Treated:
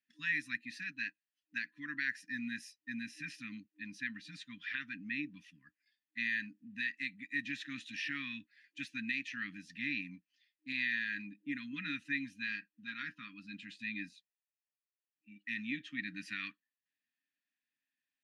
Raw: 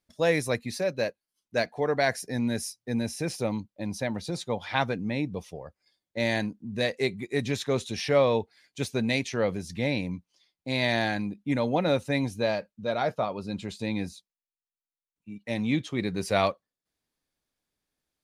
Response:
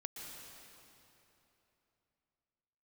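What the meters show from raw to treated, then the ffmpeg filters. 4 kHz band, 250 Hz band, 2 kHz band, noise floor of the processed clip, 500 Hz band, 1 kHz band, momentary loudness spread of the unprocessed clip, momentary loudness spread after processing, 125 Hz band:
−11.5 dB, −14.0 dB, −3.5 dB, below −85 dBFS, below −40 dB, −26.0 dB, 10 LU, 12 LU, −23.0 dB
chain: -filter_complex "[0:a]highpass=170,afftfilt=real='re*(1-between(b*sr/4096,310,1000))':imag='im*(1-between(b*sr/4096,310,1000))':win_size=4096:overlap=0.75,alimiter=limit=-20dB:level=0:latency=1:release=225,asplit=3[link_01][link_02][link_03];[link_01]bandpass=frequency=530:width_type=q:width=8,volume=0dB[link_04];[link_02]bandpass=frequency=1840:width_type=q:width=8,volume=-6dB[link_05];[link_03]bandpass=frequency=2480:width_type=q:width=8,volume=-9dB[link_06];[link_04][link_05][link_06]amix=inputs=3:normalize=0,volume=9.5dB"

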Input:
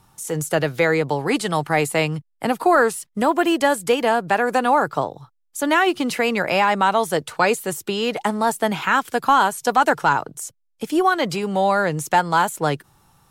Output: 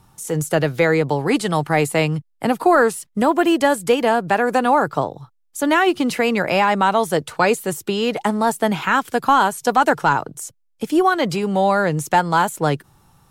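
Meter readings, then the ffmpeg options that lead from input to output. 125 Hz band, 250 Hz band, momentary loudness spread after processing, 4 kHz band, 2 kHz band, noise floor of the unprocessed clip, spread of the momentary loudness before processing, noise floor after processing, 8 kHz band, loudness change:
+4.0 dB, +3.5 dB, 7 LU, 0.0 dB, +0.5 dB, −68 dBFS, 8 LU, −63 dBFS, 0.0 dB, +1.5 dB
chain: -af "lowshelf=frequency=450:gain=4.5"

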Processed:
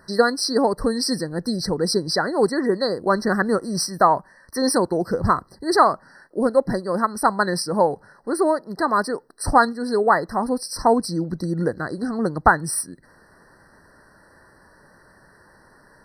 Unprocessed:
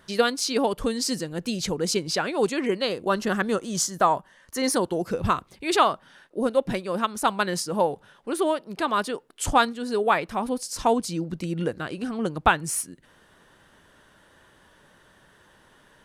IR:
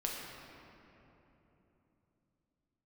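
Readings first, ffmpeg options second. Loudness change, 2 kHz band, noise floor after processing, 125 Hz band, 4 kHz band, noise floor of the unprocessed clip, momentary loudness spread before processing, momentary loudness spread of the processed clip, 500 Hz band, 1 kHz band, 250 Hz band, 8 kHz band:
+4.0 dB, +3.5 dB, −54 dBFS, +4.5 dB, +1.5 dB, −58 dBFS, 8 LU, 8 LU, +4.5 dB, +4.5 dB, +4.5 dB, +1.0 dB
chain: -af "afftfilt=real='re*eq(mod(floor(b*sr/1024/2000),2),0)':imag='im*eq(mod(floor(b*sr/1024/2000),2),0)':win_size=1024:overlap=0.75,volume=4.5dB"

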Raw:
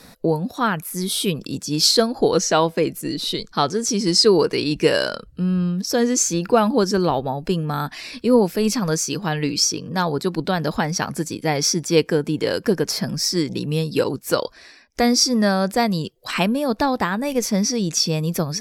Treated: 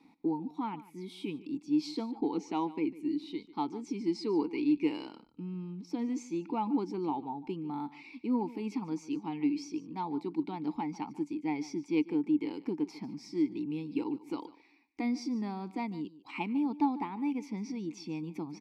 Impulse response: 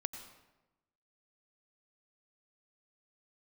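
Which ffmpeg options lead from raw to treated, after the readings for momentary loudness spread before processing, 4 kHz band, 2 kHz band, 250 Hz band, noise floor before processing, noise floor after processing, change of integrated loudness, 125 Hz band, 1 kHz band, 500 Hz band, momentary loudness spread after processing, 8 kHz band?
8 LU, −27.5 dB, −20.5 dB, −9.5 dB, −48 dBFS, −61 dBFS, −14.5 dB, −20.5 dB, −13.5 dB, −19.5 dB, 10 LU, below −30 dB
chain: -filter_complex "[0:a]aeval=exprs='0.841*(cos(1*acos(clip(val(0)/0.841,-1,1)))-cos(1*PI/2))+0.00668*(cos(8*acos(clip(val(0)/0.841,-1,1)))-cos(8*PI/2))':channel_layout=same,asplit=3[link_01][link_02][link_03];[link_01]bandpass=frequency=300:width_type=q:width=8,volume=0dB[link_04];[link_02]bandpass=frequency=870:width_type=q:width=8,volume=-6dB[link_05];[link_03]bandpass=frequency=2240:width_type=q:width=8,volume=-9dB[link_06];[link_04][link_05][link_06]amix=inputs=3:normalize=0,aecho=1:1:147:0.126,volume=-2dB"

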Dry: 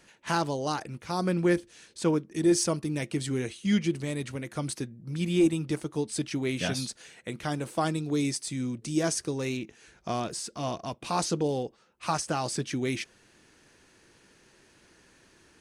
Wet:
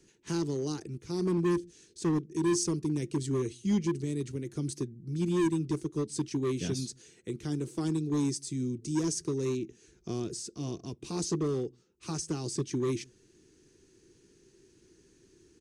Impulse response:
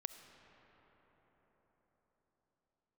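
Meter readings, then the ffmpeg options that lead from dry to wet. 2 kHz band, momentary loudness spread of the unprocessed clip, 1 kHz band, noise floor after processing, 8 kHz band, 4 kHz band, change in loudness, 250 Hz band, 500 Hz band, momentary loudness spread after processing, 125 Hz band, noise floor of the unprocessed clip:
−10.5 dB, 11 LU, −10.5 dB, −64 dBFS, −3.0 dB, −6.5 dB, −2.5 dB, −1.5 dB, −3.0 dB, 10 LU, −0.5 dB, −61 dBFS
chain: -filter_complex "[0:a]firequalizer=gain_entry='entry(140,0);entry(230,-3);entry(380,6);entry(580,-17);entry(6400,-1);entry(11000,-10)':delay=0.05:min_phase=1,acrossover=split=220|2500[link_01][link_02][link_03];[link_01]aecho=1:1:135:0.0841[link_04];[link_02]asoftclip=type=hard:threshold=-29dB[link_05];[link_04][link_05][link_03]amix=inputs=3:normalize=0"

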